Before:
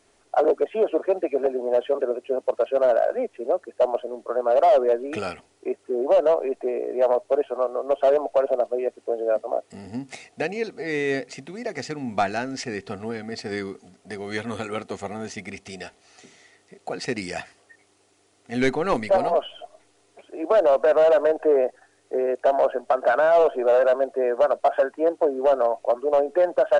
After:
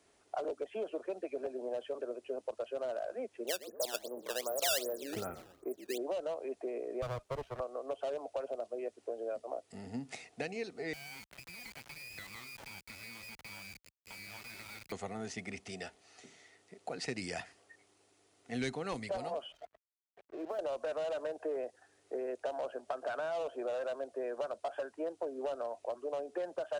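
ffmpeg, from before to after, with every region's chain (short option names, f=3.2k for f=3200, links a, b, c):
-filter_complex "[0:a]asettb=1/sr,asplit=3[a][b][c];[a]atrim=end=3.474[d];[b]atrim=start=3.47:end=5.98,asetpts=PTS-STARTPTS,afade=t=in:d=0.004:c=qsin,afade=t=out:st=2.506:d=0.004:c=qsin,lowpass=f=1.6k:w=0.5412,lowpass=f=1.6k:w=1.3066,asplit=4[e][f][g][h];[f]adelay=118,afreqshift=-45,volume=-16dB[i];[g]adelay=236,afreqshift=-90,volume=-24.6dB[j];[h]adelay=354,afreqshift=-135,volume=-33.3dB[k];[e][i][j][k]amix=inputs=4:normalize=0,atrim=end_sample=110691,acrusher=samples=12:mix=1:aa=0.000001:lfo=1:lforange=19.2:lforate=2.6[l];[c]atrim=start=5.976[m];[d][l]acrossfade=d=0.004:c1=hsin:c2=qsin[n];[n][m]acrossfade=d=0.004:c1=qsin:c2=hsin,asettb=1/sr,asplit=3[o][p][q];[o]atrim=end=7.024[r];[p]atrim=start=7.02:end=7.6,asetpts=PTS-STARTPTS,afade=t=in:d=0.004:c=qsin,afade=t=out:st=0.576:d=0.004:c=qsin,highpass=f=140:w=0.5412,highpass=f=140:w=1.3066,aeval=exprs='max(val(0),0)':c=same[s];[q]atrim=start=7.596[t];[r][s]acrossfade=d=0.004:c1=hsin:c2=qsin[u];[u][t]acrossfade=d=0.004:c1=qsin:c2=hsin,asettb=1/sr,asplit=3[v][w][x];[v]atrim=end=10.934[y];[w]atrim=start=10.93:end=14.92,asetpts=PTS-STARTPTS,afade=t=in:d=0.004:c=qsin,afade=t=out:st=3.986:d=0.004:c=qsin,lowpass=f=2.3k:t=q:w=0.5098,lowpass=f=2.3k:t=q:w=0.6013,lowpass=f=2.3k:t=q:w=0.9,lowpass=f=2.3k:t=q:w=2.563,afreqshift=-2700,acompressor=threshold=-34dB:ratio=8:attack=3.2:release=140:knee=1:detection=peak,acrusher=bits=4:dc=4:mix=0:aa=0.000001[z];[x]atrim=start=14.916[aa];[y][z]acrossfade=d=0.004:c1=hsin:c2=qsin[ab];[ab][aa]acrossfade=d=0.004:c1=qsin:c2=hsin,asettb=1/sr,asplit=3[ac][ad][ae];[ac]atrim=end=19.524[af];[ad]atrim=start=19.52:end=20.59,asetpts=PTS-STARTPTS,afade=t=in:d=0.004:c=qsin,afade=t=out:st=1.066:d=0.004:c=qsin,lowpass=1.9k,acompressor=threshold=-30dB:ratio=2:attack=3.2:release=140:knee=1:detection=peak,aeval=exprs='sgn(val(0))*max(abs(val(0))-0.00376,0)':c=same[ag];[ae]atrim=start=20.586[ah];[af][ag]acrossfade=d=0.004:c1=hsin:c2=qsin[ai];[ai][ah]acrossfade=d=0.004:c1=qsin:c2=hsin,highpass=43,acrossover=split=150|3000[aj][ak][al];[ak]acompressor=threshold=-30dB:ratio=4[am];[aj][am][al]amix=inputs=3:normalize=0,volume=-7dB"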